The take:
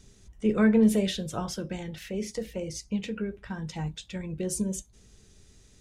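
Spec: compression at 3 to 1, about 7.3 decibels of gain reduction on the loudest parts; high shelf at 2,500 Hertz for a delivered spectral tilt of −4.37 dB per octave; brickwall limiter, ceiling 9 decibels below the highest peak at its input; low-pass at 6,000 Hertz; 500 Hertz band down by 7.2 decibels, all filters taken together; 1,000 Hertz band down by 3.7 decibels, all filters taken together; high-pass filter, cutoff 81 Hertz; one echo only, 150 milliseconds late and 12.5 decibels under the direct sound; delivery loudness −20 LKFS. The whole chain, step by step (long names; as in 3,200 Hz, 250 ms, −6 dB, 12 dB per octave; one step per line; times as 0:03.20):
high-pass filter 81 Hz
low-pass filter 6,000 Hz
parametric band 500 Hz −8.5 dB
parametric band 1,000 Hz −3.5 dB
high-shelf EQ 2,500 Hz +7 dB
downward compressor 3 to 1, threshold −28 dBFS
brickwall limiter −28.5 dBFS
single-tap delay 150 ms −12.5 dB
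level +17 dB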